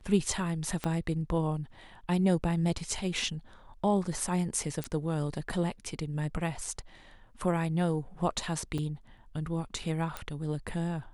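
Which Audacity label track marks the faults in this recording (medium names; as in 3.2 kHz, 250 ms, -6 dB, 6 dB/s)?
0.840000	0.840000	pop -17 dBFS
4.840000	4.840000	pop -18 dBFS
8.780000	8.790000	dropout 5.1 ms
10.170000	10.170000	pop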